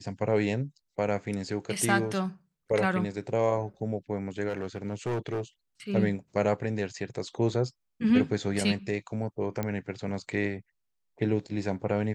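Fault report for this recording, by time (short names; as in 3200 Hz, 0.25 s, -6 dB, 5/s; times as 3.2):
4.48–5.42 clipped -27 dBFS
9.63 pop -17 dBFS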